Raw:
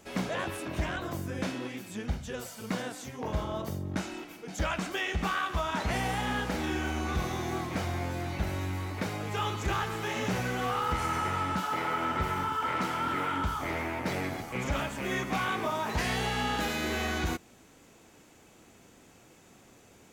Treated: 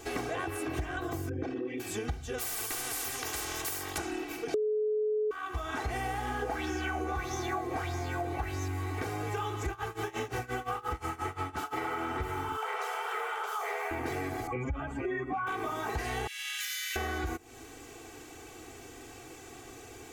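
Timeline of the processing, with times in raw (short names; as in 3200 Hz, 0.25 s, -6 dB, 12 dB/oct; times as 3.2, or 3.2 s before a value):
1.29–1.8 formant sharpening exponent 2
2.38–3.98 spectral compressor 10:1
4.54–5.31 bleep 427 Hz -14 dBFS
6.42–8.68 LFO bell 1.6 Hz 450–6200 Hz +14 dB
9.68–11.82 tremolo 5.7 Hz, depth 93%
12.57–13.91 brick-wall FIR high-pass 390 Hz
14.47–15.47 spectral contrast raised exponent 1.9
16.27–16.96 inverse Chebyshev high-pass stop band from 650 Hz, stop band 60 dB
whole clip: dynamic EQ 3900 Hz, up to -6 dB, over -49 dBFS, Q 0.95; comb 2.6 ms, depth 99%; compressor, threshold -38 dBFS; gain +6 dB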